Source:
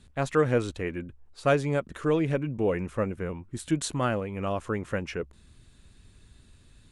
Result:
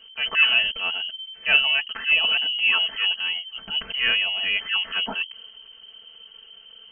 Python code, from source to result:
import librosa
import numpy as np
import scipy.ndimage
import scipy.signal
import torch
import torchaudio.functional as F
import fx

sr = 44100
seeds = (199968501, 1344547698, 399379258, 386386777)

y = fx.transient(x, sr, attack_db=-9, sustain_db=4)
y = fx.freq_invert(y, sr, carrier_hz=3100)
y = y + 0.82 * np.pad(y, (int(4.5 * sr / 1000.0), 0))[:len(y)]
y = y * 10.0 ** (4.5 / 20.0)